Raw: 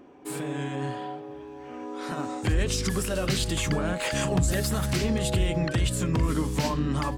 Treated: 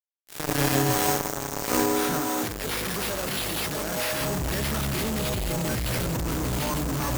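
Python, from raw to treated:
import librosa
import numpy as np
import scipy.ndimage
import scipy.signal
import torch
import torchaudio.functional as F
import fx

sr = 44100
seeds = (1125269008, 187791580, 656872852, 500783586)

y = fx.fade_in_head(x, sr, length_s=2.39)
y = fx.sample_hold(y, sr, seeds[0], rate_hz=7300.0, jitter_pct=0)
y = fx.high_shelf(y, sr, hz=6900.0, db=11.5)
y = fx.echo_split(y, sr, split_hz=780.0, low_ms=632, high_ms=165, feedback_pct=52, wet_db=-10)
y = fx.fuzz(y, sr, gain_db=41.0, gate_db=-42.0)
y = fx.over_compress(y, sr, threshold_db=-21.0, ratio=-1.0)
y = fx.low_shelf(y, sr, hz=160.0, db=-11.0, at=(2.21, 4.21))
y = F.gain(torch.from_numpy(y), -5.0).numpy()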